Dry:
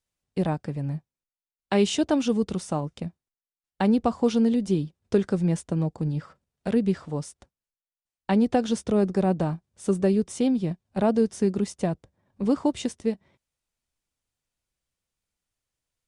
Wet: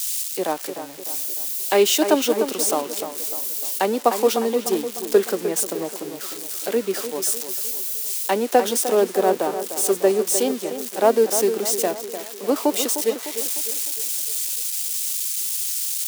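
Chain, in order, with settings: zero-crossing glitches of -24 dBFS; high-pass 340 Hz 24 dB/octave; tape echo 303 ms, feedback 63%, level -7 dB, low-pass 2.4 kHz; three bands expanded up and down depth 40%; trim +6.5 dB

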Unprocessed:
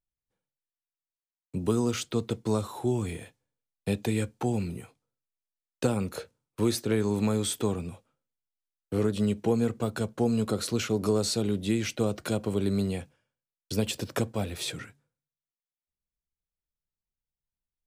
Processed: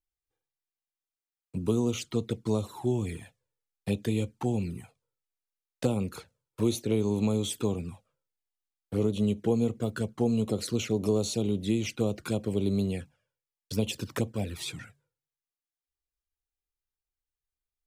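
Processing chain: touch-sensitive flanger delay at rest 2.5 ms, full sweep at -24 dBFS

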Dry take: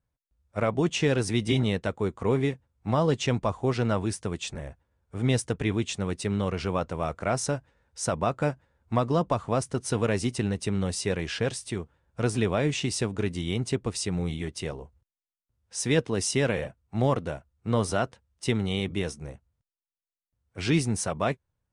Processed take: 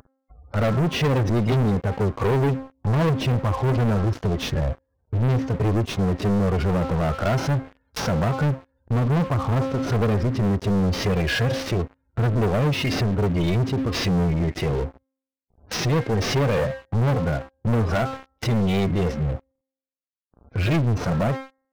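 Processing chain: CVSD coder 32 kbps; spectral gate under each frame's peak -20 dB strong; de-hum 266 Hz, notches 8; harmonic-percussive split percussive -16 dB; in parallel at +3 dB: compression 10:1, threshold -37 dBFS, peak gain reduction 17 dB; on the sum: waveshaping leveller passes 5; upward compressor, threshold -19 dBFS; trim -4 dB

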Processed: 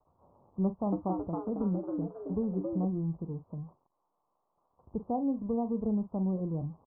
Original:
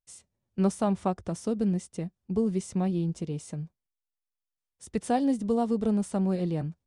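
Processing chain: zero-crossing glitches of -22 dBFS; steep low-pass 1.1 kHz 72 dB/octave; bass shelf 150 Hz +8 dB; doubling 43 ms -13 dB; 0.65–2.85 s: frequency-shifting echo 272 ms, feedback 36%, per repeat +110 Hz, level -4.5 dB; trim -7.5 dB

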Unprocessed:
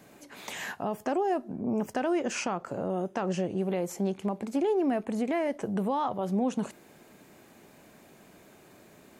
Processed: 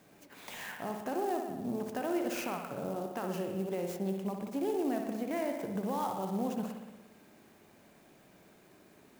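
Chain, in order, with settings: treble shelf 10 kHz +7.5 dB; spring tank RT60 1.2 s, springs 57 ms, chirp 20 ms, DRR 3 dB; sampling jitter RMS 0.027 ms; trim -7 dB

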